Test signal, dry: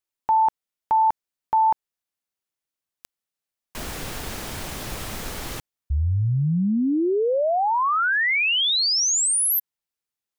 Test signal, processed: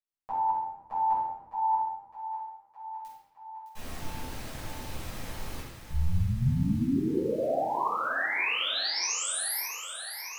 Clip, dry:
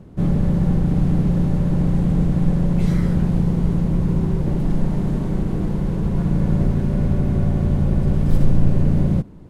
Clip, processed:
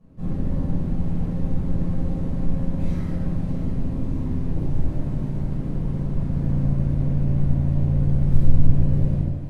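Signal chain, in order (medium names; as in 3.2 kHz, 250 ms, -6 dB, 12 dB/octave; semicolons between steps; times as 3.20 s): AM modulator 86 Hz, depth 70%; on a send: thinning echo 612 ms, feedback 76%, high-pass 550 Hz, level -10 dB; on the sum: simulated room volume 460 m³, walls mixed, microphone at 5.9 m; trim -18 dB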